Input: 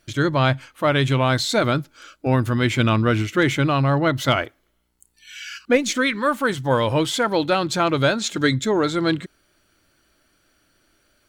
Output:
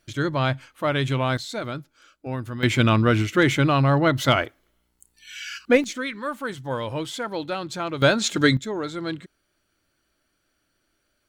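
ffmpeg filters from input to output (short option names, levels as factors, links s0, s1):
-af "asetnsamples=n=441:p=0,asendcmd='1.37 volume volume -11dB;2.63 volume volume 0dB;5.84 volume volume -9dB;8.02 volume volume 1dB;8.57 volume volume -9dB',volume=0.596"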